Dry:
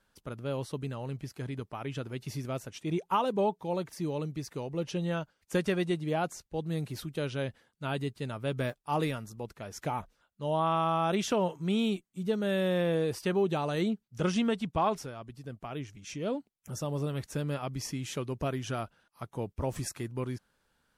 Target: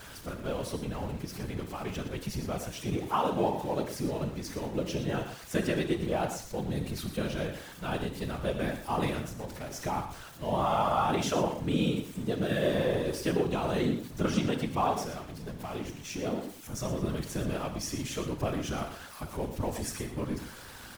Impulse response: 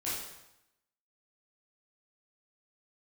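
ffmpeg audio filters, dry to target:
-filter_complex "[0:a]aeval=exprs='val(0)+0.5*0.00944*sgn(val(0))':channel_layout=same,asplit=2[link_01][link_02];[1:a]atrim=start_sample=2205,afade=type=out:start_time=0.15:duration=0.01,atrim=end_sample=7056,asetrate=34839,aresample=44100[link_03];[link_02][link_03]afir=irnorm=-1:irlink=0,volume=-9.5dB[link_04];[link_01][link_04]amix=inputs=2:normalize=0,afftfilt=real='hypot(re,im)*cos(2*PI*random(0))':imag='hypot(re,im)*sin(2*PI*random(1))':win_size=512:overlap=0.75,aecho=1:1:118:0.237,volume=3dB"

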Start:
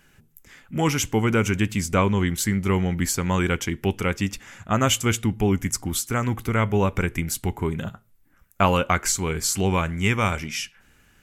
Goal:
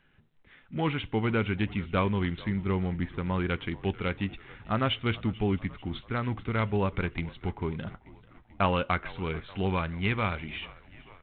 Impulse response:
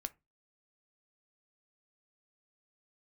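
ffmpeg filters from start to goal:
-filter_complex "[0:a]asplit=3[link_01][link_02][link_03];[link_01]afade=type=out:start_time=2.46:duration=0.02[link_04];[link_02]highshelf=frequency=2400:gain=-9,afade=type=in:start_time=2.46:duration=0.02,afade=type=out:start_time=3.48:duration=0.02[link_05];[link_03]afade=type=in:start_time=3.48:duration=0.02[link_06];[link_04][link_05][link_06]amix=inputs=3:normalize=0,asplit=6[link_07][link_08][link_09][link_10][link_11][link_12];[link_08]adelay=440,afreqshift=-49,volume=-20.5dB[link_13];[link_09]adelay=880,afreqshift=-98,volume=-24.7dB[link_14];[link_10]adelay=1320,afreqshift=-147,volume=-28.8dB[link_15];[link_11]adelay=1760,afreqshift=-196,volume=-33dB[link_16];[link_12]adelay=2200,afreqshift=-245,volume=-37.1dB[link_17];[link_07][link_13][link_14][link_15][link_16][link_17]amix=inputs=6:normalize=0,volume=-6.5dB" -ar 8000 -c:a adpcm_g726 -b:a 32k

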